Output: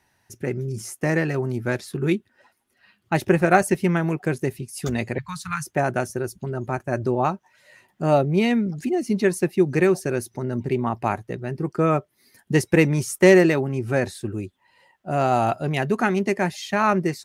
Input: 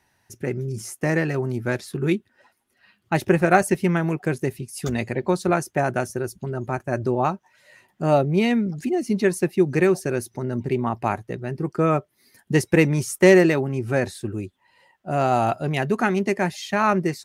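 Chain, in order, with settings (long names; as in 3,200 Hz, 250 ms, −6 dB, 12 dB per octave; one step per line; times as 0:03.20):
0:05.18–0:05.66: elliptic band-stop filter 150–1,100 Hz, stop band 40 dB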